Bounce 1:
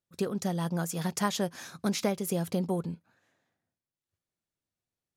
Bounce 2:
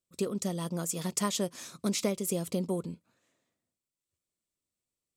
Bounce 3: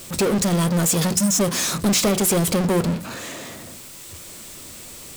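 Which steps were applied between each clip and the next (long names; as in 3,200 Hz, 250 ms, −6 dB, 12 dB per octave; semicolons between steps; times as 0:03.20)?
thirty-one-band graphic EQ 100 Hz −7 dB, 160 Hz −5 dB, 800 Hz −10 dB, 1,600 Hz −11 dB, 8,000 Hz +9 dB
time-frequency box erased 0:01.17–0:01.40, 290–5,100 Hz; power curve on the samples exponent 0.35; hum removal 62.08 Hz, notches 8; level +3.5 dB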